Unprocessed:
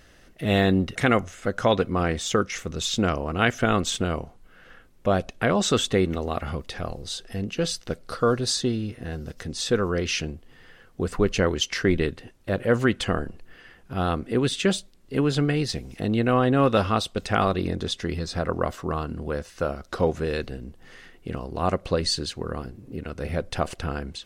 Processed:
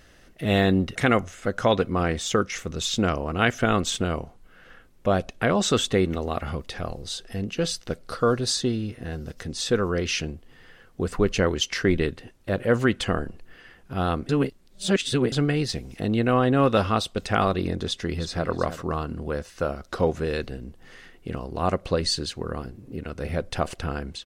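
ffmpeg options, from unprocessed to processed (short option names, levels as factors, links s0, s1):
-filter_complex "[0:a]asplit=2[s0][s1];[s1]afade=t=in:st=17.86:d=0.01,afade=t=out:st=18.49:d=0.01,aecho=0:1:320|640:0.266073|0.0266073[s2];[s0][s2]amix=inputs=2:normalize=0,asplit=3[s3][s4][s5];[s3]atrim=end=14.292[s6];[s4]atrim=start=14.288:end=15.322,asetpts=PTS-STARTPTS,areverse[s7];[s5]atrim=start=15.318[s8];[s6][s7]acrossfade=d=0.004:c1=hsin:c2=hsin[s9];[s9][s8]acrossfade=d=0.004:c1=hsin:c2=hsin"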